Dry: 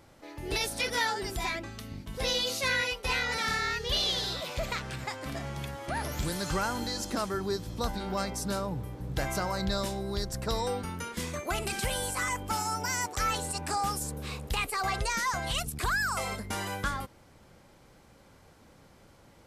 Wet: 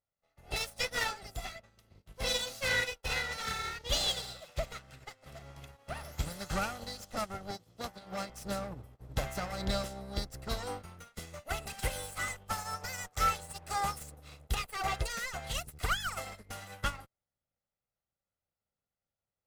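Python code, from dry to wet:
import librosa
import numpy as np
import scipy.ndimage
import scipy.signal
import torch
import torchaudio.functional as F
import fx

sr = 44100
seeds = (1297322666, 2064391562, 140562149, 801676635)

y = fx.lower_of_two(x, sr, delay_ms=1.5)
y = fx.highpass(y, sr, hz=110.0, slope=12, at=(7.51, 8.3))
y = fx.upward_expand(y, sr, threshold_db=-53.0, expansion=2.5)
y = F.gain(torch.from_numpy(y), 2.5).numpy()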